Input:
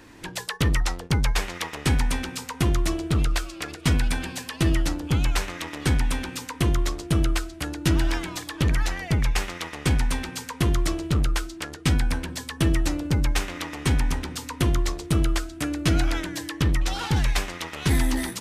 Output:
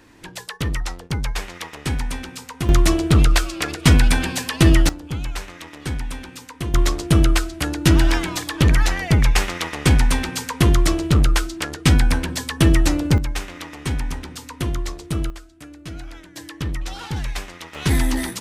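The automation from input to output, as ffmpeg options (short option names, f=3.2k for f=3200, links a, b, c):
-af "asetnsamples=n=441:p=0,asendcmd='2.69 volume volume 8.5dB;4.89 volume volume -4.5dB;6.74 volume volume 7dB;13.18 volume volume -2dB;15.3 volume volume -13dB;16.36 volume volume -4dB;17.75 volume volume 3dB',volume=-2dB"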